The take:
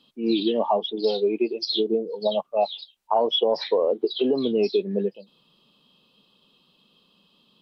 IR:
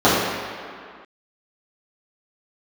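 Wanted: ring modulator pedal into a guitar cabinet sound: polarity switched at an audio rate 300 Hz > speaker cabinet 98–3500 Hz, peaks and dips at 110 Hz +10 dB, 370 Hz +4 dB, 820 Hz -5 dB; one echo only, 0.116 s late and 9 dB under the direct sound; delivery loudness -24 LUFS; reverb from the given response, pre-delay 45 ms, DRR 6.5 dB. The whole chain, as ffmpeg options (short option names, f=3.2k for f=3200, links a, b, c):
-filter_complex "[0:a]aecho=1:1:116:0.355,asplit=2[a][b];[1:a]atrim=start_sample=2205,adelay=45[c];[b][c]afir=irnorm=-1:irlink=0,volume=-33.5dB[d];[a][d]amix=inputs=2:normalize=0,aeval=exprs='val(0)*sgn(sin(2*PI*300*n/s))':c=same,highpass=98,equalizer=f=110:t=q:w=4:g=10,equalizer=f=370:t=q:w=4:g=4,equalizer=f=820:t=q:w=4:g=-5,lowpass=f=3.5k:w=0.5412,lowpass=f=3.5k:w=1.3066,volume=-2.5dB"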